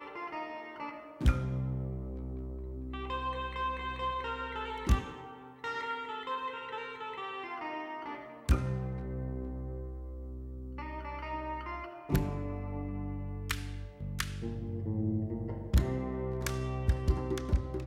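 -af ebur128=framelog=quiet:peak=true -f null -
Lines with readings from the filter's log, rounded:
Integrated loudness:
  I:         -36.4 LUFS
  Threshold: -46.4 LUFS
Loudness range:
  LRA:         4.5 LU
  Threshold: -56.8 LUFS
  LRA low:   -38.7 LUFS
  LRA high:  -34.2 LUFS
True peak:
  Peak:      -13.5 dBFS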